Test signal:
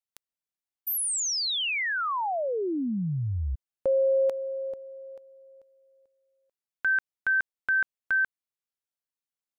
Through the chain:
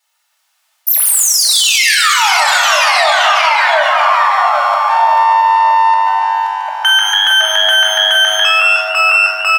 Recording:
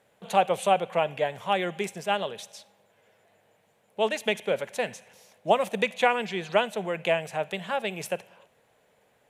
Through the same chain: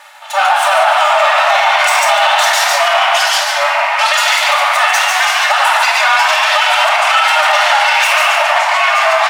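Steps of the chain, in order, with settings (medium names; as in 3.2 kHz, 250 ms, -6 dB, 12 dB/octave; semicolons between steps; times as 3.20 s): comb filter that takes the minimum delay 2.3 ms; treble shelf 11 kHz -8.5 dB; reverse; compression 12:1, threshold -36 dBFS; reverse; ever faster or slower copies 305 ms, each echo -3 st, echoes 3; brick-wall FIR high-pass 580 Hz; frequency-shifting echo 145 ms, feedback 34%, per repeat +99 Hz, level -4 dB; simulated room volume 1100 m³, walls mixed, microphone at 2.6 m; loudness maximiser +30.5 dB; trim -1 dB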